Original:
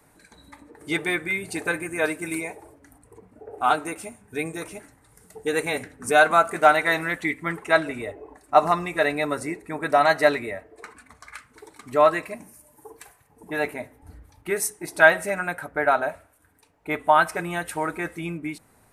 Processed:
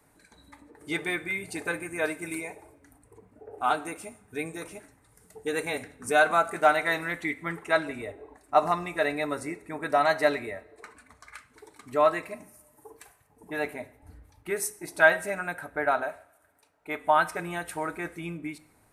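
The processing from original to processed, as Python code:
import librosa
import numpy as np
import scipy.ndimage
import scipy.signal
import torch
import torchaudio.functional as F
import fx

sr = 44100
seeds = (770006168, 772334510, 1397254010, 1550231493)

y = fx.low_shelf(x, sr, hz=230.0, db=-9.5, at=(16.03, 17.04))
y = fx.rev_double_slope(y, sr, seeds[0], early_s=0.62, late_s=3.0, knee_db=-27, drr_db=15.0)
y = F.gain(torch.from_numpy(y), -5.0).numpy()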